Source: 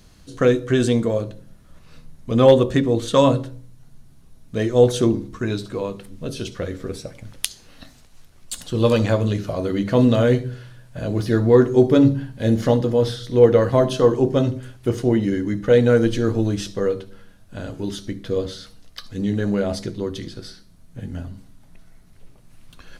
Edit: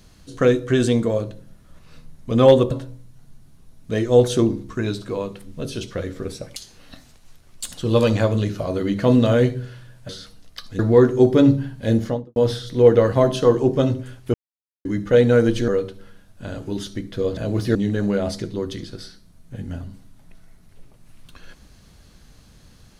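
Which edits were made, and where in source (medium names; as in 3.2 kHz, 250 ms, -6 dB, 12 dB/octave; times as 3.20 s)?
2.71–3.35 s: delete
7.20–7.45 s: delete
10.98–11.36 s: swap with 18.49–19.19 s
12.46–12.93 s: studio fade out
14.91–15.42 s: mute
16.25–16.80 s: delete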